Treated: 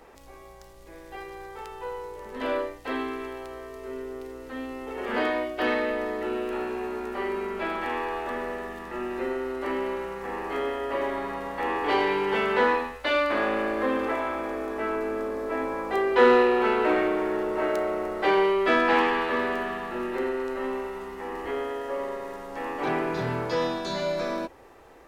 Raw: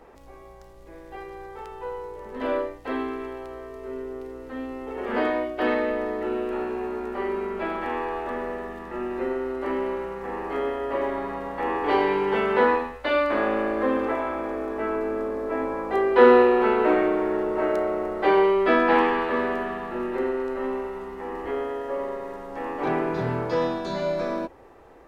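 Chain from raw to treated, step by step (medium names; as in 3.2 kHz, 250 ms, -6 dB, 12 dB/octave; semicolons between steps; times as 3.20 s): treble shelf 2 kHz +9.5 dB; in parallel at -7 dB: saturation -20.5 dBFS, distortion -8 dB; on the sum: trim -5.5 dB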